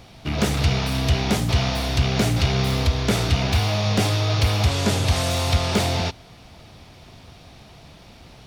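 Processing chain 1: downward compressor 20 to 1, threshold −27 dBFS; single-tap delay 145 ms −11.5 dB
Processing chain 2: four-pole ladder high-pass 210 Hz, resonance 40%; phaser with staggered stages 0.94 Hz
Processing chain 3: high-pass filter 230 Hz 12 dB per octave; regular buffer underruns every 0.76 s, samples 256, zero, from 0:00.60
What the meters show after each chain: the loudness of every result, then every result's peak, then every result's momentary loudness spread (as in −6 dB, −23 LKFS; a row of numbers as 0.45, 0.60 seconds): −31.0, −35.0, −24.5 LKFS; −18.5, −16.5, −8.5 dBFS; 15, 3, 2 LU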